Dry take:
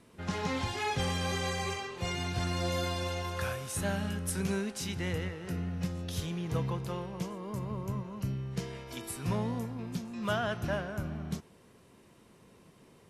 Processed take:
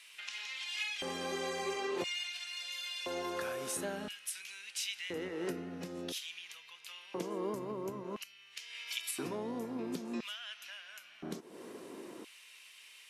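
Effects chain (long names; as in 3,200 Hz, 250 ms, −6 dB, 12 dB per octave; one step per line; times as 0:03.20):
downward compressor 10 to 1, threshold −44 dBFS, peak gain reduction 17.5 dB
auto-filter high-pass square 0.49 Hz 320–2,600 Hz
level +9 dB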